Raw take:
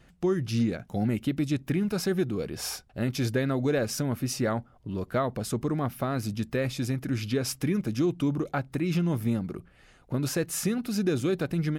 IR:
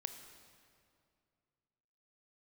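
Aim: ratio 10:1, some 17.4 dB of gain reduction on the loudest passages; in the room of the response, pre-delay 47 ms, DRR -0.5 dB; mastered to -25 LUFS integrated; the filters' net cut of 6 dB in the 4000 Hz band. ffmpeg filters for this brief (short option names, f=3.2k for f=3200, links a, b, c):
-filter_complex "[0:a]equalizer=f=4k:t=o:g=-8.5,acompressor=threshold=-40dB:ratio=10,asplit=2[a][b];[1:a]atrim=start_sample=2205,adelay=47[c];[b][c]afir=irnorm=-1:irlink=0,volume=2.5dB[d];[a][d]amix=inputs=2:normalize=0,volume=16dB"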